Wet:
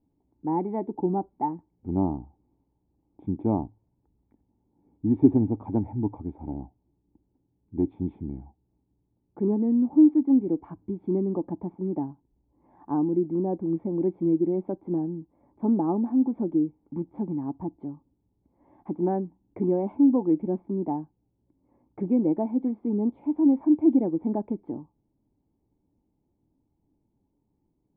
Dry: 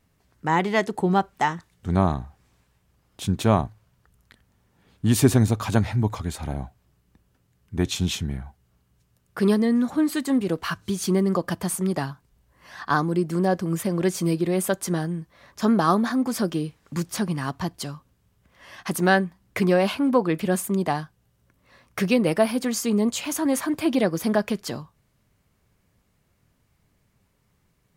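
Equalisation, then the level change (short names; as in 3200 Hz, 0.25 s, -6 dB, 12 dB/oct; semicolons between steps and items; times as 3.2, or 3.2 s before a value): vocal tract filter u; bell 150 Hz -3.5 dB 1.7 oct; +7.5 dB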